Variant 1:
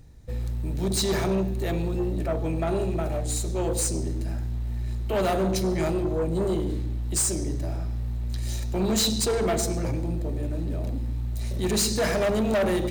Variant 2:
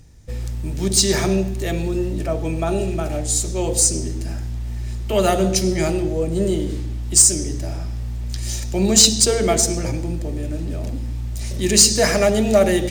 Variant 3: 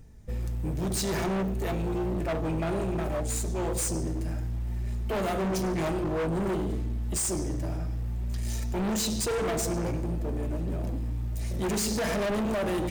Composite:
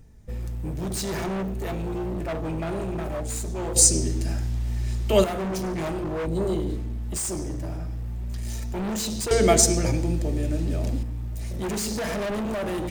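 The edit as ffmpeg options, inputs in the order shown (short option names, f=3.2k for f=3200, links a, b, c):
-filter_complex "[1:a]asplit=2[a][b];[2:a]asplit=4[c][d][e][f];[c]atrim=end=3.762[g];[a]atrim=start=3.758:end=5.242[h];[d]atrim=start=5.238:end=6.262[i];[0:a]atrim=start=6.258:end=6.762[j];[e]atrim=start=6.758:end=9.312[k];[b]atrim=start=9.308:end=11.032[l];[f]atrim=start=11.028[m];[g][h]acrossfade=d=0.004:c1=hsin:c2=hsin[n];[n][i]acrossfade=d=0.004:c1=hsin:c2=hsin[o];[o][j]acrossfade=d=0.004:c1=hsin:c2=hsin[p];[p][k]acrossfade=d=0.004:c1=hsin:c2=hsin[q];[q][l]acrossfade=d=0.004:c1=hsin:c2=hsin[r];[r][m]acrossfade=d=0.004:c1=hsin:c2=hsin"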